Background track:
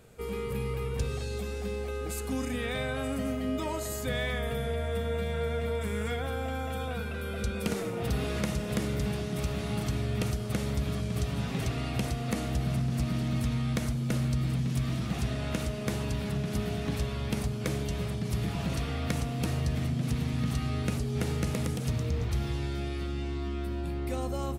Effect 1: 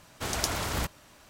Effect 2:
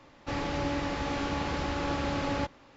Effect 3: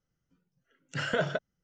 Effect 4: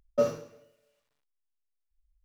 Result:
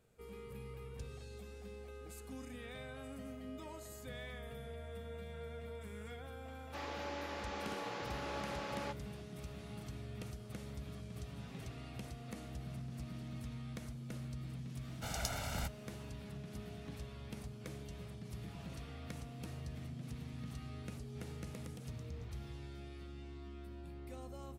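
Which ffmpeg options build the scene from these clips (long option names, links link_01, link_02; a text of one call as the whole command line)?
ffmpeg -i bed.wav -i cue0.wav -i cue1.wav -filter_complex "[0:a]volume=-16dB[link_01];[2:a]highpass=frequency=350:width=0.5412,highpass=frequency=350:width=1.3066[link_02];[1:a]aecho=1:1:1.4:0.89[link_03];[link_02]atrim=end=2.76,asetpts=PTS-STARTPTS,volume=-9.5dB,afade=type=in:duration=0.004:curve=hsin,afade=type=out:start_time=2.756:duration=0.004:curve=hsin,adelay=6460[link_04];[link_03]atrim=end=1.29,asetpts=PTS-STARTPTS,volume=-13dB,afade=type=in:duration=0.004:curve=hsin,afade=type=out:start_time=1.286:duration=0.004:curve=hsin,adelay=14810[link_05];[link_01][link_04][link_05]amix=inputs=3:normalize=0" out.wav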